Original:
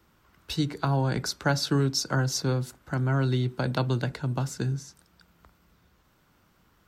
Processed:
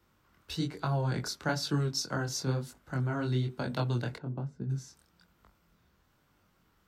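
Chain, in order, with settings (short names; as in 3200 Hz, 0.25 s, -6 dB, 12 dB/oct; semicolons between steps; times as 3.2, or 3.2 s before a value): chorus 1.1 Hz, delay 20 ms, depth 6 ms; 4.17–4.69 band-pass 460 Hz -> 110 Hz, Q 0.63; gain -2.5 dB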